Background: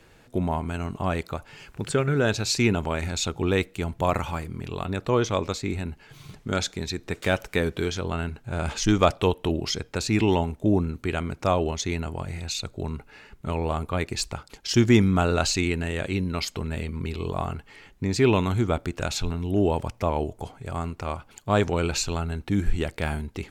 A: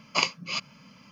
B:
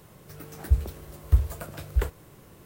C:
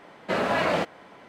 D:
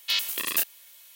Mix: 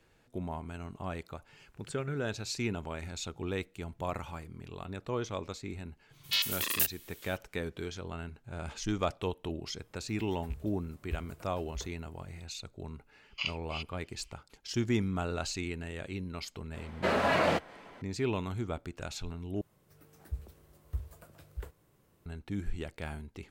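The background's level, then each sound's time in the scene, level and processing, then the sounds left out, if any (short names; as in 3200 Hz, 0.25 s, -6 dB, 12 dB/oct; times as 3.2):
background -12 dB
6.23 add D -3.5 dB, fades 0.02 s
9.79 add B -17.5 dB + rattling part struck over -19 dBFS, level -24 dBFS
13.23 add A -4.5 dB + band-pass 2900 Hz, Q 3.6
16.74 add C -3 dB + high shelf 9200 Hz +3 dB
19.61 replace with B -16.5 dB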